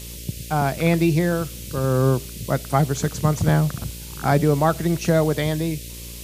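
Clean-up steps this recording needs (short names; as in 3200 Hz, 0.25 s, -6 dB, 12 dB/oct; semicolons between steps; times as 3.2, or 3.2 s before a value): de-hum 58.5 Hz, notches 10; noise print and reduce 30 dB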